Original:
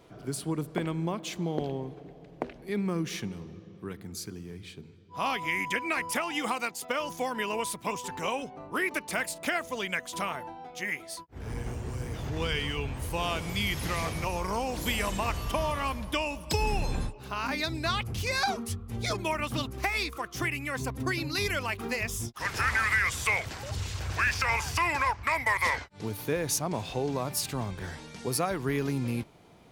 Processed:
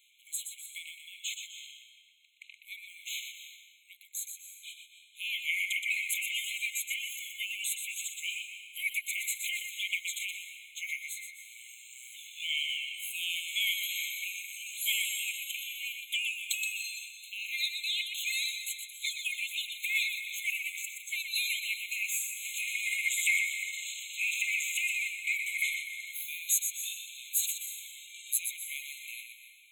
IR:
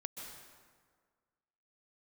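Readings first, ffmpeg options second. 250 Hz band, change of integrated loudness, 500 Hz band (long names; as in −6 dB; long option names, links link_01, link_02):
below −40 dB, −1.5 dB, below −40 dB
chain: -filter_complex "[0:a]highshelf=frequency=4900:gain=8.5,asplit=2[link_01][link_02];[1:a]atrim=start_sample=2205,adelay=122[link_03];[link_02][link_03]afir=irnorm=-1:irlink=0,volume=-2.5dB[link_04];[link_01][link_04]amix=inputs=2:normalize=0,afftfilt=real='re*eq(mod(floor(b*sr/1024/2100),2),1)':imag='im*eq(mod(floor(b*sr/1024/2100),2),1)':win_size=1024:overlap=0.75"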